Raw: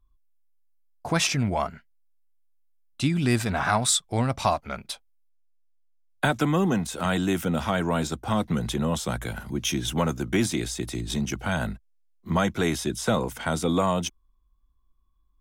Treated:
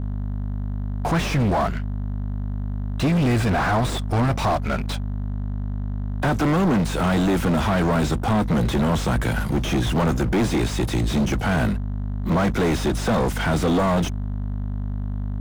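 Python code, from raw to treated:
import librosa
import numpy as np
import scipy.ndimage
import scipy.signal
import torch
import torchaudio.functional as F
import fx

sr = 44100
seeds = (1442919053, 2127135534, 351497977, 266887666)

y = fx.add_hum(x, sr, base_hz=50, snr_db=11)
y = fx.leveller(y, sr, passes=5)
y = fx.slew_limit(y, sr, full_power_hz=250.0)
y = y * librosa.db_to_amplitude(-6.0)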